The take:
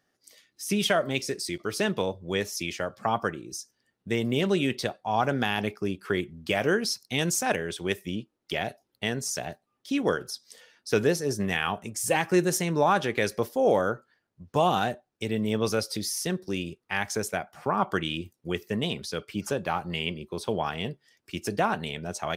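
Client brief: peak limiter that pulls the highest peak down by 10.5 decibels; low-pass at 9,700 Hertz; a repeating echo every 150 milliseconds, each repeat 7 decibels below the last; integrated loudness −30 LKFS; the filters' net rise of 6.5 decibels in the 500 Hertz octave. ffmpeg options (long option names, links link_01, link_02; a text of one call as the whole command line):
ffmpeg -i in.wav -af "lowpass=9700,equalizer=frequency=500:width_type=o:gain=8,alimiter=limit=-16dB:level=0:latency=1,aecho=1:1:150|300|450|600|750:0.447|0.201|0.0905|0.0407|0.0183,volume=-2.5dB" out.wav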